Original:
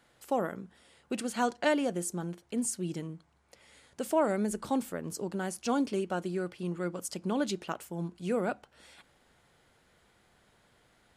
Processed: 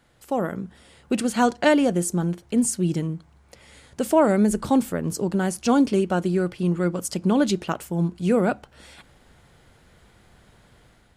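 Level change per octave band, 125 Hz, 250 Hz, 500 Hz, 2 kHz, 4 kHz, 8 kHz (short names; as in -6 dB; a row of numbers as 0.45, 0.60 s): +13.5, +11.5, +9.0, +8.0, +8.0, +8.0 dB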